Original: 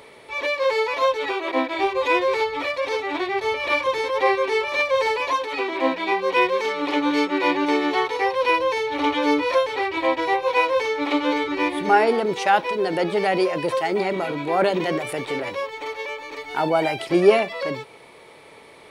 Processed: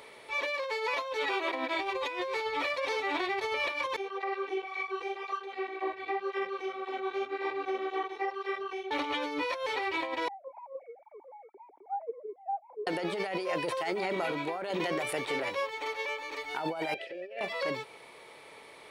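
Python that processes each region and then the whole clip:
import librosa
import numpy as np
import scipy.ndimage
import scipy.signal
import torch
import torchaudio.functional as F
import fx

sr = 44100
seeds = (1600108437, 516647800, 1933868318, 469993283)

y = fx.chain(x, sr, fx.lowpass(hz=1300.0, slope=6),
    fx.robotise(hz=387.0),
    fx.flanger_cancel(hz=1.9, depth_ms=5.4), at=(3.96, 8.91))
y = fx.chain(y, sr, fx.sine_speech(),
    fx.formant_cascade(vowel='u'), at=(10.28, 12.87))
y = fx.chain(y, sr, fx.vowel_filter(vowel='e'),
    fx.over_compress(threshold_db=-35.0, ratio=-1.0),
    fx.clip_hard(threshold_db=-22.5), at=(16.94, 17.41))
y = fx.low_shelf(y, sr, hz=380.0, db=-8.0)
y = fx.over_compress(y, sr, threshold_db=-27.0, ratio=-1.0)
y = y * 10.0 ** (-5.0 / 20.0)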